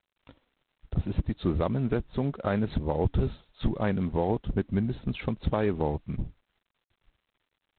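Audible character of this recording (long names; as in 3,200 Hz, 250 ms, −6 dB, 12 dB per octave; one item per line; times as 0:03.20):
a quantiser's noise floor 12 bits, dither triangular
G.726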